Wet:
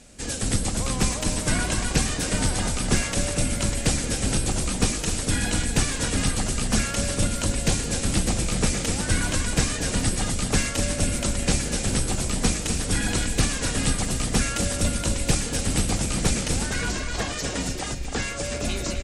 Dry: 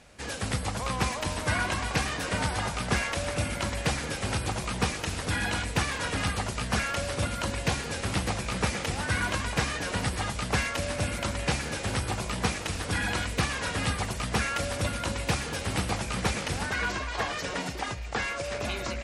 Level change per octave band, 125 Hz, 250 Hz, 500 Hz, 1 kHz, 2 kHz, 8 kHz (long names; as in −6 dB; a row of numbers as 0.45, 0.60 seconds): +5.0, +7.0, +3.0, −2.0, −0.5, +11.0 decibels